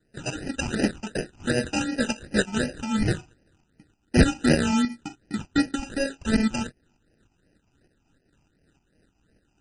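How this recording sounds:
tremolo saw up 3.3 Hz, depth 60%
aliases and images of a low sample rate 1,100 Hz, jitter 0%
phaser sweep stages 8, 2.7 Hz, lowest notch 500–1,100 Hz
MP3

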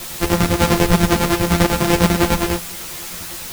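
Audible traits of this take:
a buzz of ramps at a fixed pitch in blocks of 256 samples
chopped level 10 Hz, depth 65%, duty 50%
a quantiser's noise floor 6 bits, dither triangular
a shimmering, thickened sound

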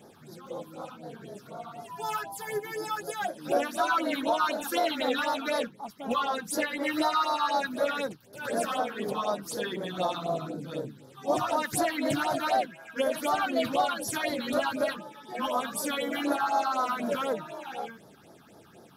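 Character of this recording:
phaser sweep stages 6, 4 Hz, lowest notch 510–2,700 Hz

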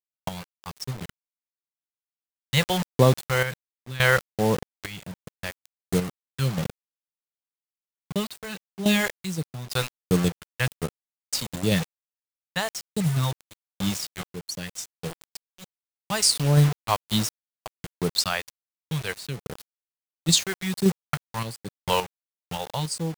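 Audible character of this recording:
phaser sweep stages 2, 1.4 Hz, lowest notch 210–2,200 Hz
a quantiser's noise floor 6 bits, dither none
sample-and-hold tremolo, depth 85%

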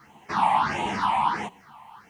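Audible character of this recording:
phaser sweep stages 6, 1.5 Hz, lowest notch 380–1,400 Hz
a quantiser's noise floor 12 bits, dither triangular
a shimmering, thickened sound

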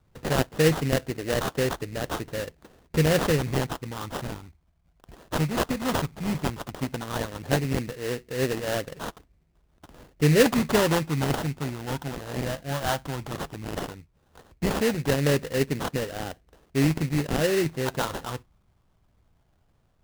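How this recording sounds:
phaser sweep stages 8, 0.14 Hz, lowest notch 420–1,500 Hz
aliases and images of a low sample rate 2,300 Hz, jitter 20%

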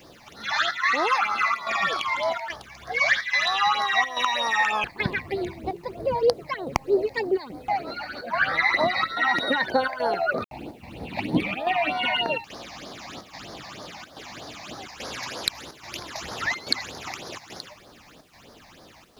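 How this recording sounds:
phaser sweep stages 8, 3.2 Hz, lowest notch 390–2,700 Hz
chopped level 1.2 Hz, depth 65%, duty 85%
a quantiser's noise floor 10 bits, dither none

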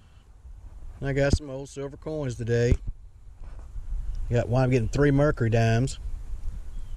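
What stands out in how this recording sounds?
background noise floor −51 dBFS
spectral slope −7.0 dB per octave

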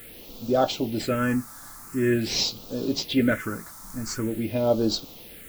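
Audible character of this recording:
a quantiser's noise floor 8 bits, dither triangular
phaser sweep stages 4, 0.46 Hz, lowest notch 450–1,900 Hz

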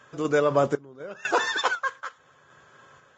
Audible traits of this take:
sample-and-hold tremolo 4 Hz, depth 95%
Ogg Vorbis

